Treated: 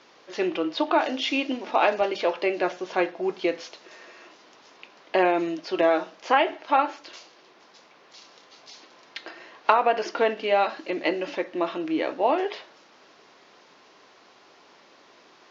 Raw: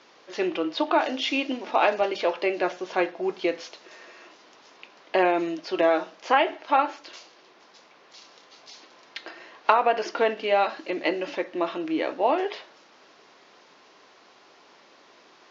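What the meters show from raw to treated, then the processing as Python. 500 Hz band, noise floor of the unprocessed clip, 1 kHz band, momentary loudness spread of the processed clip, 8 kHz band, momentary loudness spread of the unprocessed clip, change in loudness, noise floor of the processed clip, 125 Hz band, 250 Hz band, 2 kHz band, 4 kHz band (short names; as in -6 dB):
+0.5 dB, -55 dBFS, 0.0 dB, 15 LU, n/a, 15 LU, +0.5 dB, -55 dBFS, +1.5 dB, +0.5 dB, 0.0 dB, 0.0 dB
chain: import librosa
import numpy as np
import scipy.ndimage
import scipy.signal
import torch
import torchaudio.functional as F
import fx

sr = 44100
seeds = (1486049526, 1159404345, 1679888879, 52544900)

y = fx.low_shelf(x, sr, hz=150.0, db=4.0)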